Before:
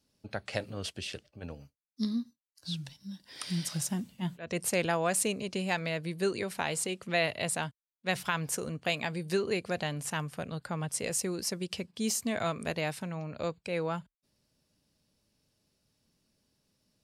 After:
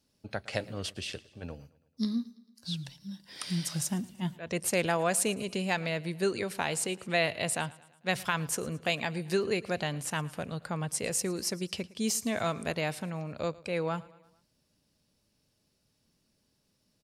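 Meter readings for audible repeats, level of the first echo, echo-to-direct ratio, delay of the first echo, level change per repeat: 3, −21.5 dB, −20.0 dB, 111 ms, −5.5 dB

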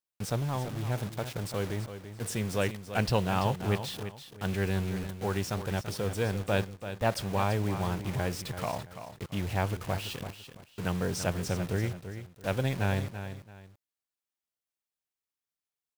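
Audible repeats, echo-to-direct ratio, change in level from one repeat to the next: 2, −10.0 dB, −11.0 dB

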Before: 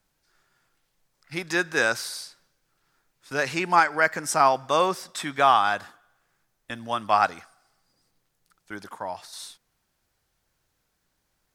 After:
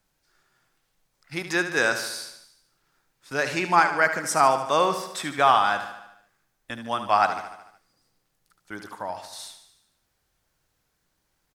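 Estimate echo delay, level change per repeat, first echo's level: 74 ms, −5.0 dB, −10.0 dB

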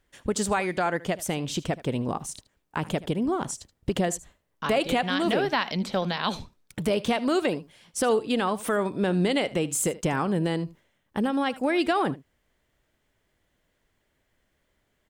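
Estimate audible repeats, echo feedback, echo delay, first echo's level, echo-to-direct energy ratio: 1, repeats not evenly spaced, 77 ms, −18.5 dB, −18.5 dB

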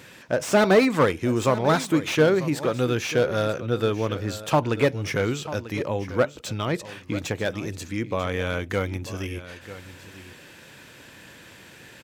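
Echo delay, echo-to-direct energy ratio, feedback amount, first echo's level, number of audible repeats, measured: 942 ms, −14.5 dB, repeats not evenly spaced, −14.5 dB, 1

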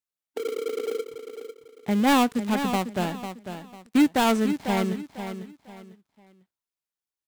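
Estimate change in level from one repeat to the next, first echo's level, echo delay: −10.5 dB, −9.5 dB, 498 ms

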